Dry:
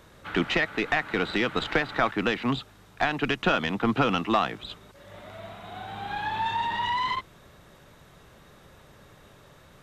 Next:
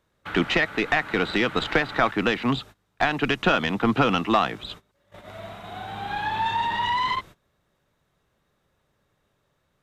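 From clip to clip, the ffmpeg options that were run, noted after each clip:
-af "agate=range=-21dB:threshold=-44dB:ratio=16:detection=peak,volume=3dB"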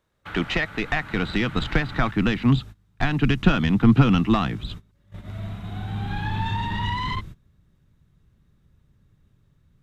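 -af "asubboost=boost=10.5:cutoff=190,volume=-2.5dB"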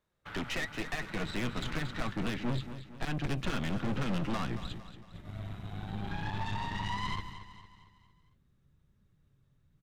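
-filter_complex "[0:a]flanger=delay=4.6:depth=3.9:regen=65:speed=1:shape=triangular,aeval=exprs='(tanh(35.5*val(0)+0.7)-tanh(0.7))/35.5':c=same,asplit=2[a][b];[b]aecho=0:1:228|456|684|912|1140:0.251|0.121|0.0579|0.0278|0.0133[c];[a][c]amix=inputs=2:normalize=0"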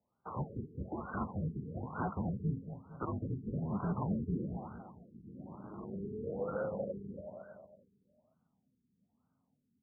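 -af "highpass=f=210:t=q:w=0.5412,highpass=f=210:t=q:w=1.307,lowpass=f=3.3k:t=q:w=0.5176,lowpass=f=3.3k:t=q:w=0.7071,lowpass=f=3.3k:t=q:w=1.932,afreqshift=-400,highpass=88,afftfilt=real='re*lt(b*sr/1024,440*pow(1600/440,0.5+0.5*sin(2*PI*1.1*pts/sr)))':imag='im*lt(b*sr/1024,440*pow(1600/440,0.5+0.5*sin(2*PI*1.1*pts/sr)))':win_size=1024:overlap=0.75,volume=3dB"

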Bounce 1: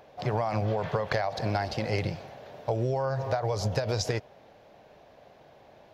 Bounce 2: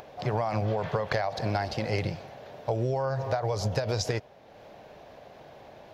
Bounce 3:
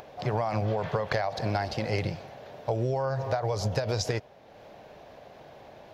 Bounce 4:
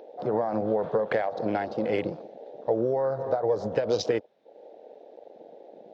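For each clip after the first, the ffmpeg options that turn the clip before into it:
-af "acompressor=mode=upward:threshold=-41dB:ratio=2.5"
-af anull
-af "highpass=210,equalizer=f=220:t=q:w=4:g=6,equalizer=f=320:t=q:w=4:g=7,equalizer=f=480:t=q:w=4:g=8,equalizer=f=1.1k:t=q:w=4:g=-4,equalizer=f=3.7k:t=q:w=4:g=6,lowpass=f=7.5k:w=0.5412,lowpass=f=7.5k:w=1.3066,afwtdn=0.0126"

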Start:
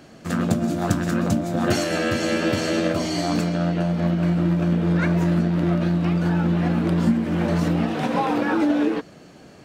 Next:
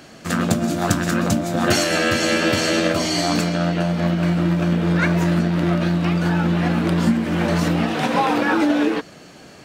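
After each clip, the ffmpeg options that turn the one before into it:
-af "tiltshelf=f=910:g=-3.5,volume=4.5dB"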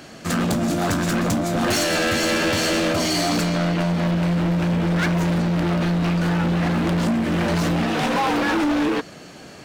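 -af "volume=20dB,asoftclip=hard,volume=-20dB,volume=2dB"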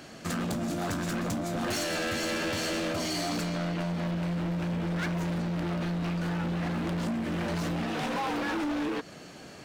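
-af "acompressor=threshold=-24dB:ratio=6,volume=-5.5dB"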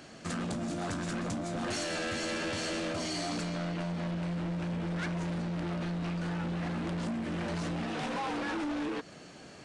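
-af "aresample=22050,aresample=44100,volume=-3.5dB"

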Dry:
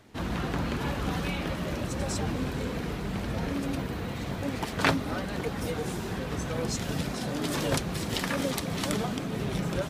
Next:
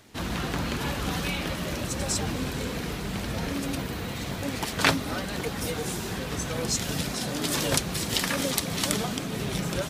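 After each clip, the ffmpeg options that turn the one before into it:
-af "highshelf=f=2.7k:g=9.5"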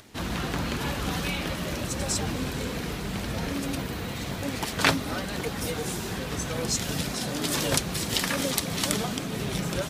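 -af "acompressor=mode=upward:threshold=-48dB:ratio=2.5"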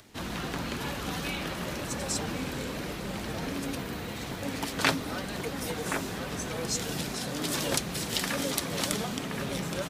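-filter_complex "[0:a]acrossover=split=150|2600[a][b][c];[a]asoftclip=type=tanh:threshold=-37dB[d];[b]aecho=1:1:1073:0.562[e];[d][e][c]amix=inputs=3:normalize=0,volume=-3.5dB"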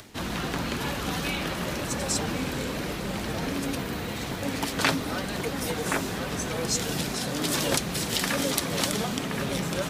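-af "areverse,acompressor=mode=upward:threshold=-34dB:ratio=2.5,areverse,alimiter=level_in=11dB:limit=-1dB:release=50:level=0:latency=1,volume=-7dB"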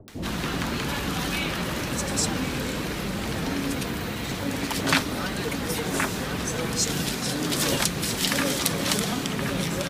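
-filter_complex "[0:a]acrossover=split=630[a][b];[b]adelay=80[c];[a][c]amix=inputs=2:normalize=0,volume=2.5dB"

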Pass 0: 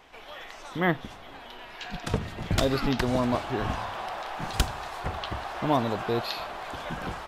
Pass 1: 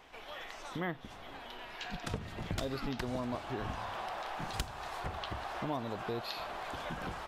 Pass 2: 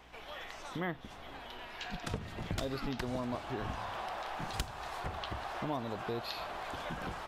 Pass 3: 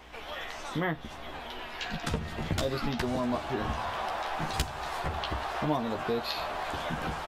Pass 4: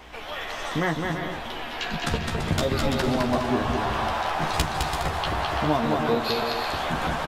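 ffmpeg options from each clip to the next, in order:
-af "acompressor=threshold=-34dB:ratio=2.5,volume=-3dB"
-af "aeval=exprs='val(0)+0.000794*(sin(2*PI*60*n/s)+sin(2*PI*2*60*n/s)/2+sin(2*PI*3*60*n/s)/3+sin(2*PI*4*60*n/s)/4+sin(2*PI*5*60*n/s)/5)':c=same"
-filter_complex "[0:a]asplit=2[a][b];[b]adelay=13,volume=-5dB[c];[a][c]amix=inputs=2:normalize=0,volume=5.5dB"
-af "aecho=1:1:210|336|411.6|457|484.2:0.631|0.398|0.251|0.158|0.1,volume=5dB"

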